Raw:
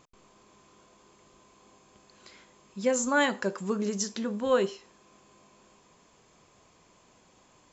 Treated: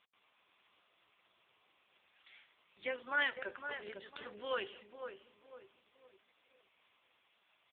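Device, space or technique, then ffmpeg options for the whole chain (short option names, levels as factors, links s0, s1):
telephone: -filter_complex "[0:a]equalizer=f=960:w=1.3:g=-5.5,asplit=3[s0][s1][s2];[s0]afade=t=out:st=3.19:d=0.02[s3];[s1]highpass=64,afade=t=in:st=3.19:d=0.02,afade=t=out:st=4.72:d=0.02[s4];[s2]afade=t=in:st=4.72:d=0.02[s5];[s3][s4][s5]amix=inputs=3:normalize=0,highpass=340,lowpass=3200,aderivative,asplit=2[s6][s7];[s7]adelay=505,lowpass=f=1300:p=1,volume=0.398,asplit=2[s8][s9];[s9]adelay=505,lowpass=f=1300:p=1,volume=0.42,asplit=2[s10][s11];[s11]adelay=505,lowpass=f=1300:p=1,volume=0.42,asplit=2[s12][s13];[s13]adelay=505,lowpass=f=1300:p=1,volume=0.42,asplit=2[s14][s15];[s15]adelay=505,lowpass=f=1300:p=1,volume=0.42[s16];[s6][s8][s10][s12][s14][s16]amix=inputs=6:normalize=0,asoftclip=type=tanh:threshold=0.0158,volume=4.22" -ar 8000 -c:a libopencore_amrnb -b:a 4750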